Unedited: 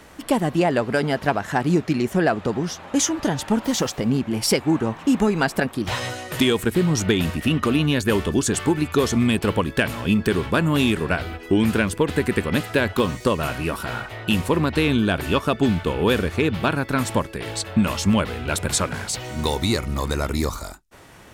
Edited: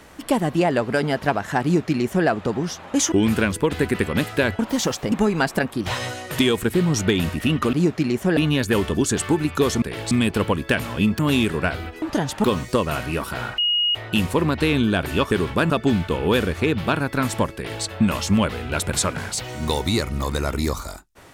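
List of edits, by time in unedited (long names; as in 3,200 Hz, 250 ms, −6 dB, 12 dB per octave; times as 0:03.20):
0:01.63–0:02.27: duplicate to 0:07.74
0:03.12–0:03.54: swap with 0:11.49–0:12.96
0:04.07–0:05.13: remove
0:10.27–0:10.66: move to 0:15.46
0:14.10: insert tone 2,880 Hz −17 dBFS 0.37 s
0:17.31–0:17.60: duplicate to 0:09.19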